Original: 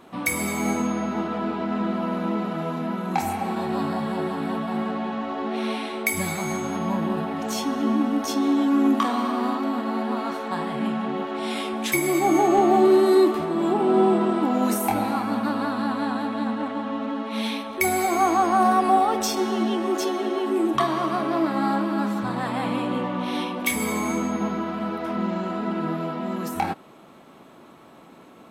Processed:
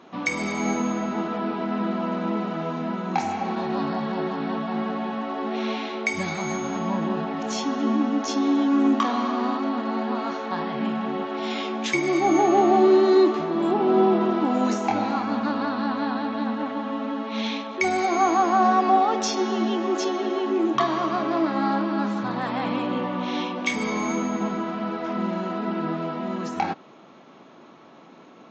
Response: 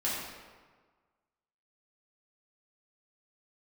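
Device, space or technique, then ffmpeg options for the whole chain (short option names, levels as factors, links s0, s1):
Bluetooth headset: -af "highpass=140,aresample=16000,aresample=44100" -ar 16000 -c:a sbc -b:a 64k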